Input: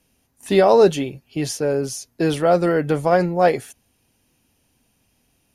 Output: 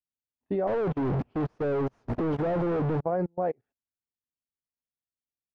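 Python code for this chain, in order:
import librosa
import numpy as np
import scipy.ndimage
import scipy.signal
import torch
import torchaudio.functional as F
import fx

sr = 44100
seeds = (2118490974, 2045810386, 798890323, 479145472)

y = fx.clip_1bit(x, sr, at=(0.67, 3.01))
y = scipy.signal.sosfilt(scipy.signal.butter(2, 1000.0, 'lowpass', fs=sr, output='sos'), y)
y = fx.level_steps(y, sr, step_db=21)
y = fx.upward_expand(y, sr, threshold_db=-34.0, expansion=2.5)
y = y * librosa.db_to_amplitude(-4.5)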